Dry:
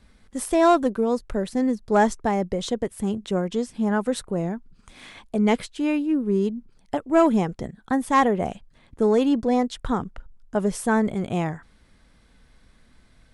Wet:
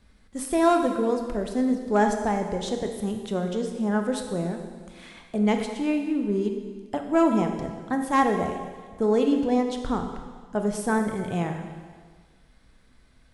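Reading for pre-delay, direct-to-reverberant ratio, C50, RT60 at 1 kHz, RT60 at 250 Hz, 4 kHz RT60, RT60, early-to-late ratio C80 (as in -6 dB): 20 ms, 4.5 dB, 6.0 dB, 1.6 s, 1.5 s, 1.6 s, 1.6 s, 7.0 dB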